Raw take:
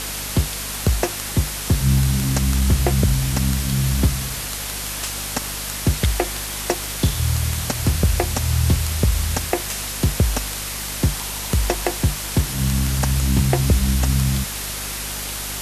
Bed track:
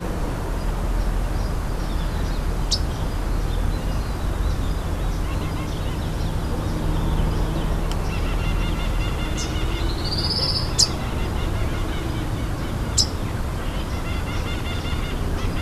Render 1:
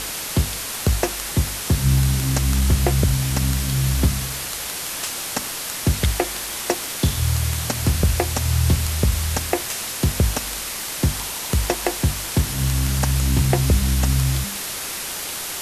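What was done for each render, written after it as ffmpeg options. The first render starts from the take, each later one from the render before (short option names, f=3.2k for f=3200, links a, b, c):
-af "bandreject=f=50:t=h:w=4,bandreject=f=100:t=h:w=4,bandreject=f=150:t=h:w=4,bandreject=f=200:t=h:w=4,bandreject=f=250:t=h:w=4"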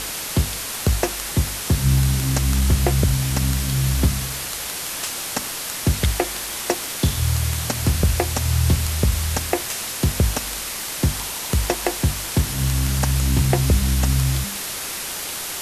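-af anull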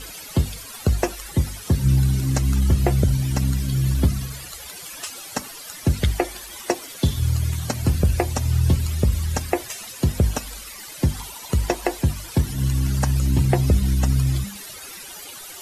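-af "afftdn=nr=15:nf=-29"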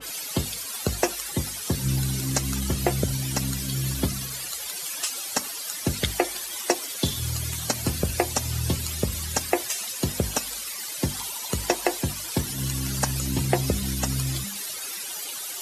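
-af "highpass=f=270:p=1,adynamicequalizer=threshold=0.00562:dfrequency=2900:dqfactor=0.7:tfrequency=2900:tqfactor=0.7:attack=5:release=100:ratio=0.375:range=2.5:mode=boostabove:tftype=highshelf"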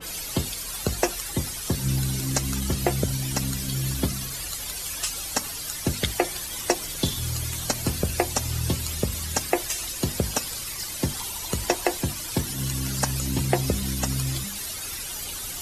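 -filter_complex "[1:a]volume=-21dB[a];[0:a][a]amix=inputs=2:normalize=0"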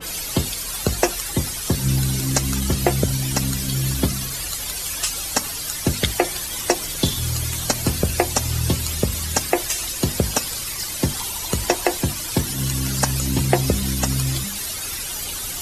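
-af "volume=5dB,alimiter=limit=-1dB:level=0:latency=1"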